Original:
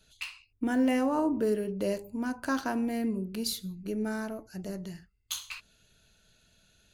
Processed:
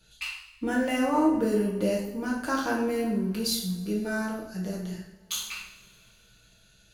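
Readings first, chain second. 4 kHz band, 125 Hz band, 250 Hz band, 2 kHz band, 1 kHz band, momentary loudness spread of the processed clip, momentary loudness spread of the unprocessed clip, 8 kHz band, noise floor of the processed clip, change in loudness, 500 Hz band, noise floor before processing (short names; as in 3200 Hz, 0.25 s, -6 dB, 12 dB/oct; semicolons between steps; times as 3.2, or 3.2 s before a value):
+5.0 dB, +6.0 dB, +2.5 dB, +5.0 dB, +4.5 dB, 12 LU, 14 LU, +5.0 dB, -60 dBFS, +3.0 dB, +3.5 dB, -68 dBFS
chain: two-slope reverb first 0.59 s, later 2.9 s, from -21 dB, DRR -3 dB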